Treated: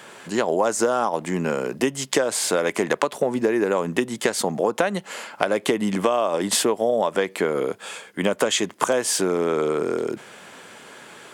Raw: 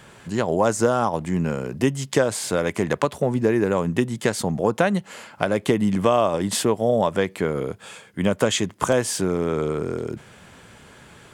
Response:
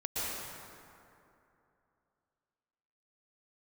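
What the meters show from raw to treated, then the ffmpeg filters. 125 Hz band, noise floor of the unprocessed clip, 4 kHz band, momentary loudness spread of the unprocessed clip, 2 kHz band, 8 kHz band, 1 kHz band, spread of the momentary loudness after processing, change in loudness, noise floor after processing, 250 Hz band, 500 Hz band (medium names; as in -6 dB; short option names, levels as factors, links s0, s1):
-8.5 dB, -48 dBFS, +3.0 dB, 8 LU, +1.5 dB, +3.5 dB, 0.0 dB, 13 LU, 0.0 dB, -46 dBFS, -2.5 dB, 0.0 dB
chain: -af "highpass=300,acompressor=threshold=0.0794:ratio=6,volume=1.88"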